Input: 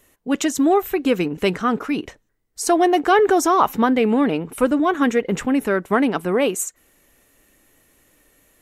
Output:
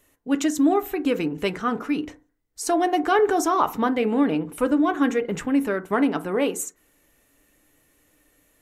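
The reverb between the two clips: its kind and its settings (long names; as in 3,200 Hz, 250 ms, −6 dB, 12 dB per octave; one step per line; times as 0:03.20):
feedback delay network reverb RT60 0.37 s, low-frequency decay 1.05×, high-frequency decay 0.35×, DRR 9 dB
level −5 dB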